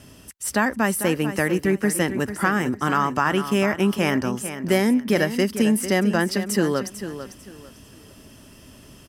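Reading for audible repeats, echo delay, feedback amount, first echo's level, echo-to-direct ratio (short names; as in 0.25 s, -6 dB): 3, 0.447 s, 26%, -11.0 dB, -10.5 dB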